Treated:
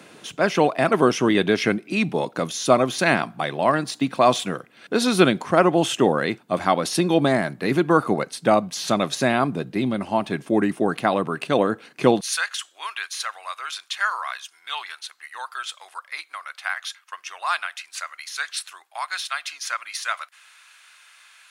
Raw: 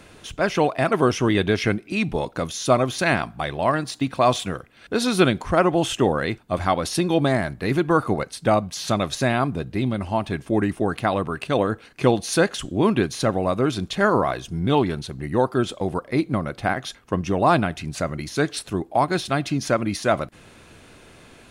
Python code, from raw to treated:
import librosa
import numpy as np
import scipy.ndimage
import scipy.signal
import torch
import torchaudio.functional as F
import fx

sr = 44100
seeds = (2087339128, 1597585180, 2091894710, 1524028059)

y = fx.highpass(x, sr, hz=fx.steps((0.0, 150.0), (12.21, 1200.0)), slope=24)
y = y * librosa.db_to_amplitude(1.5)